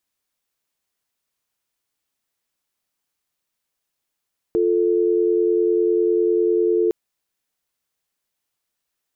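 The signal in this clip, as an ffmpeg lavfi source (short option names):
-f lavfi -i "aevalsrc='0.126*(sin(2*PI*350*t)+sin(2*PI*440*t))':d=2.36:s=44100"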